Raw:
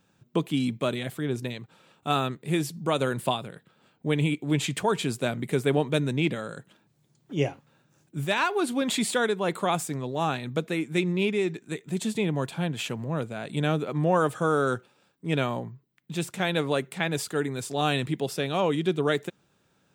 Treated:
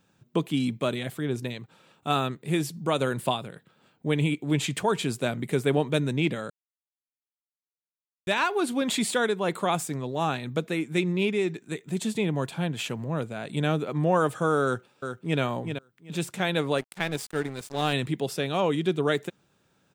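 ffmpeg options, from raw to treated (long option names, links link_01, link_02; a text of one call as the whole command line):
ffmpeg -i in.wav -filter_complex "[0:a]asplit=2[link_01][link_02];[link_02]afade=type=in:start_time=14.64:duration=0.01,afade=type=out:start_time=15.4:duration=0.01,aecho=0:1:380|760|1140:0.446684|0.0893367|0.0178673[link_03];[link_01][link_03]amix=inputs=2:normalize=0,asettb=1/sr,asplit=3[link_04][link_05][link_06];[link_04]atrim=end=16.784[link_07];[link_05]atrim=start=16.78:end=17.93,asetpts=PTS-STARTPTS,afade=type=in:duration=0.004:curve=qsin,afade=type=out:start_time=1.146:duration=0.004:curve=qsin,aeval=exprs='sgn(val(0))*max(abs(val(0))-0.0133,0)':channel_layout=same[link_08];[link_06]atrim=start=17.926[link_09];[link_07][link_08]acrossfade=duration=0.004:curve1=hsin:curve2=qsin[link_10];[link_10][link_09]acrossfade=duration=0.004:curve1=qsin:curve2=hsin,asplit=3[link_11][link_12][link_13];[link_11]atrim=end=6.5,asetpts=PTS-STARTPTS,afade=type=out:start_time=6.496:duration=0.004:curve=hsin[link_14];[link_12]atrim=start=6.5:end=8.27,asetpts=PTS-STARTPTS,volume=0[link_15];[link_13]atrim=start=8.27,asetpts=PTS-STARTPTS,afade=type=in:duration=0.004:curve=hsin[link_16];[link_14][link_15][link_16]concat=n=3:v=0:a=1" out.wav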